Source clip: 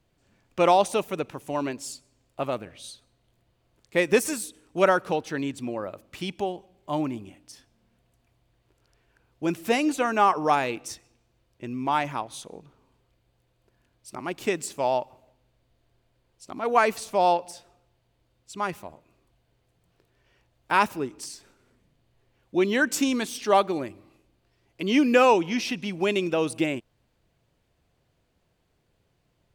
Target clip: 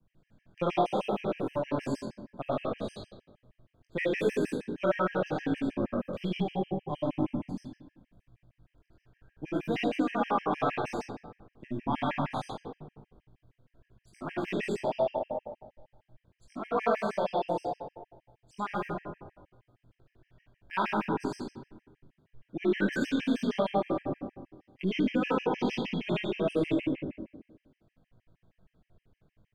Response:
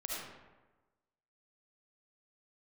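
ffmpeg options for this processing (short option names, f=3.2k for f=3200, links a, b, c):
-filter_complex "[0:a]bass=f=250:g=11,treble=f=4k:g=-13[a];[1:a]atrim=start_sample=2205[b];[a][b]afir=irnorm=-1:irlink=0,adynamicequalizer=threshold=0.00501:dfrequency=3900:dqfactor=1.2:tfrequency=3900:tqfactor=1.2:attack=5:release=100:ratio=0.375:range=3.5:mode=boostabove:tftype=bell,acrossover=split=150|890|3200[c][d][e][f];[c]aeval=exprs='max(val(0),0)':c=same[g];[d]asplit=5[h][i][j][k][l];[i]adelay=117,afreqshift=-34,volume=-7dB[m];[j]adelay=234,afreqshift=-68,volume=-16.1dB[n];[k]adelay=351,afreqshift=-102,volume=-25.2dB[o];[l]adelay=468,afreqshift=-136,volume=-34.4dB[p];[h][m][n][o][p]amix=inputs=5:normalize=0[q];[g][q][e][f]amix=inputs=4:normalize=0,acompressor=threshold=-23dB:ratio=3,flanger=delay=18.5:depth=4.1:speed=0.71,afftfilt=real='re*gt(sin(2*PI*6.4*pts/sr)*(1-2*mod(floor(b*sr/1024/1600),2)),0)':imag='im*gt(sin(2*PI*6.4*pts/sr)*(1-2*mod(floor(b*sr/1024/1600),2)),0)':win_size=1024:overlap=0.75,volume=1.5dB"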